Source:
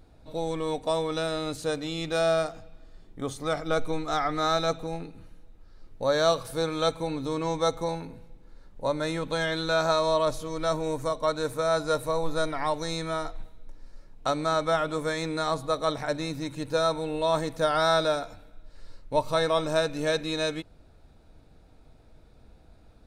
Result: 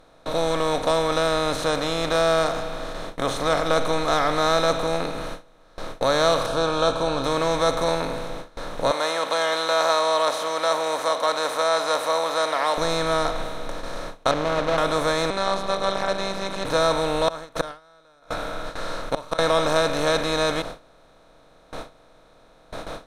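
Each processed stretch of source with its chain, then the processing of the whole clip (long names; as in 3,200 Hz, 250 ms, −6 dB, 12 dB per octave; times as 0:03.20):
0:06.46–0:07.24: Butterworth band-reject 2,000 Hz, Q 2 + high-frequency loss of the air 110 metres + double-tracking delay 15 ms −11.5 dB
0:08.91–0:12.78: high-pass filter 540 Hz 24 dB per octave + comb filter 1 ms, depth 31%
0:14.31–0:14.78: running median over 41 samples + high-frequency loss of the air 180 metres
0:15.30–0:16.65: low-pass filter 5,500 Hz + phases set to zero 194 Hz
0:17.28–0:19.39: parametric band 1,400 Hz +11.5 dB 0.33 octaves + gate with flip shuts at −18 dBFS, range −37 dB
whole clip: compressor on every frequency bin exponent 0.4; noise gate with hold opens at −21 dBFS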